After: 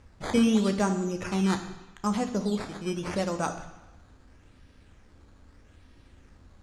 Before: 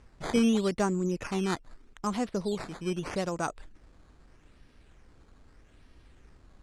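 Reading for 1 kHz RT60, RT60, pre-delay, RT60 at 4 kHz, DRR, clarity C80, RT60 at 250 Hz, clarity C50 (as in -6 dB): 1.1 s, 1.0 s, 3 ms, 1.1 s, 6.0 dB, 12.0 dB, 1.0 s, 10.0 dB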